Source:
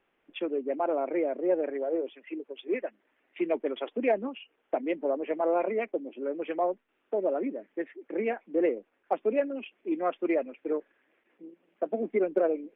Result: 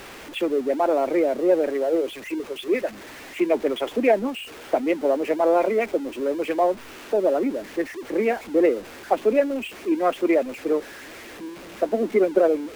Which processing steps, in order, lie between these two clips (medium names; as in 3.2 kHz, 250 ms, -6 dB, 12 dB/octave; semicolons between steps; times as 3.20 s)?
jump at every zero crossing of -42 dBFS; peaking EQ 64 Hz +9 dB 0.22 oct; trim +7 dB